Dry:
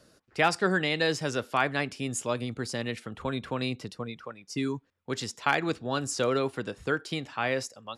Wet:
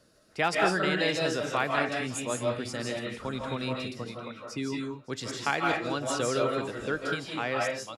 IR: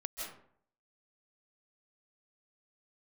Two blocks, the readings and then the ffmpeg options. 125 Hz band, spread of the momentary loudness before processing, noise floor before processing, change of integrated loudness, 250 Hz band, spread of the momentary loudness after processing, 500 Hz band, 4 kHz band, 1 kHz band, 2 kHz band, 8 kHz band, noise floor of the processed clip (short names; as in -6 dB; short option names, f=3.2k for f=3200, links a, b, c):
-2.0 dB, 11 LU, -65 dBFS, 0.0 dB, -0.5 dB, 10 LU, +0.5 dB, 0.0 dB, +0.5 dB, 0.0 dB, -0.5 dB, -59 dBFS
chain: -filter_complex "[0:a]aecho=1:1:563|1126|1689:0.0944|0.0387|0.0159[a];[1:a]atrim=start_sample=2205,afade=t=out:st=0.3:d=0.01,atrim=end_sample=13671[b];[a][b]afir=irnorm=-1:irlink=0"